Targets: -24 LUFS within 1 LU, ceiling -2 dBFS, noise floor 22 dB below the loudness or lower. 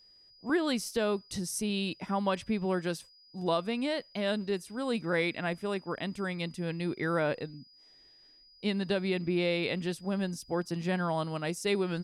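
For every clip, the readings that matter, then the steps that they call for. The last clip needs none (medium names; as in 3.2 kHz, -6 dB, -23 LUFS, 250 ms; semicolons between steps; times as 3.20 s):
steady tone 4.9 kHz; tone level -57 dBFS; loudness -32.0 LUFS; peak level -17.5 dBFS; loudness target -24.0 LUFS
-> band-stop 4.9 kHz, Q 30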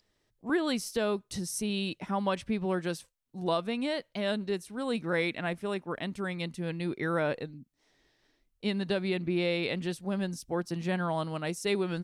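steady tone not found; loudness -32.0 LUFS; peak level -17.5 dBFS; loudness target -24.0 LUFS
-> trim +8 dB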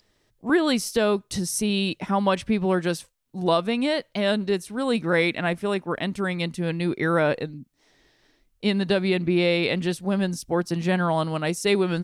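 loudness -24.0 LUFS; peak level -9.5 dBFS; noise floor -68 dBFS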